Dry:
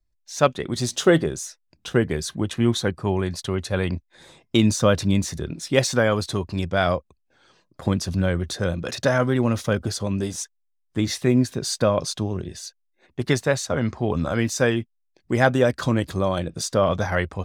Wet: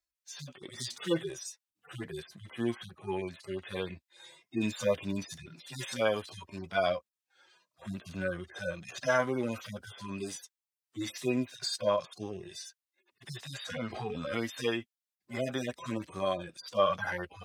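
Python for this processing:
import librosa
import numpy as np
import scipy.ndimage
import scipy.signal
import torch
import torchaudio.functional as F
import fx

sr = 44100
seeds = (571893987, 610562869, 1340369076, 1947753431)

y = fx.hpss_only(x, sr, part='harmonic')
y = fx.highpass(y, sr, hz=1500.0, slope=6)
y = fx.pre_swell(y, sr, db_per_s=58.0, at=(13.52, 14.4))
y = y * librosa.db_to_amplitude(3.5)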